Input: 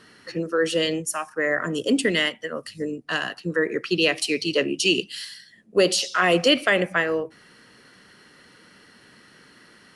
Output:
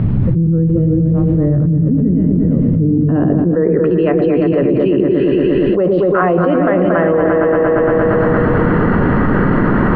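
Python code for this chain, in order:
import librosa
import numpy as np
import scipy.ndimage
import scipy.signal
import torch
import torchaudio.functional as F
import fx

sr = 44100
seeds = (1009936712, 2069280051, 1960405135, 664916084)

p1 = fx.low_shelf(x, sr, hz=190.0, db=10.5)
p2 = fx.rider(p1, sr, range_db=4, speed_s=0.5)
p3 = p1 + (p2 * 10.0 ** (-0.5 / 20.0))
p4 = fx.filter_sweep_lowpass(p3, sr, from_hz=120.0, to_hz=1100.0, start_s=2.69, end_s=3.79, q=1.3)
p5 = fx.dmg_noise_colour(p4, sr, seeds[0], colour='brown', level_db=-56.0)
p6 = fx.air_absorb(p5, sr, metres=440.0)
p7 = p6 + fx.echo_opening(p6, sr, ms=116, hz=400, octaves=2, feedback_pct=70, wet_db=-3, dry=0)
p8 = fx.env_flatten(p7, sr, amount_pct=100)
y = p8 * 10.0 ** (-5.0 / 20.0)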